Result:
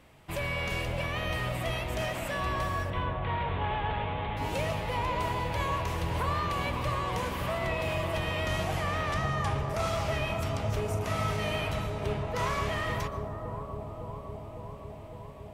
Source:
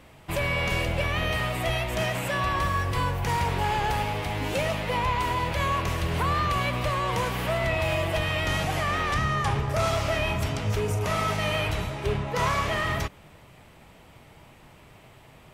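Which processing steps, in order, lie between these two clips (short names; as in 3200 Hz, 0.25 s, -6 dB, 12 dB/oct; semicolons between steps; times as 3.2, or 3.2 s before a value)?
2.9–4.37 elliptic low-pass 3600 Hz, stop band 40 dB; on a send: analogue delay 0.557 s, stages 4096, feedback 77%, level -6 dB; on the sum: plate-style reverb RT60 0.63 s, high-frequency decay 1×, pre-delay 0.11 s, DRR 16 dB; gain -6 dB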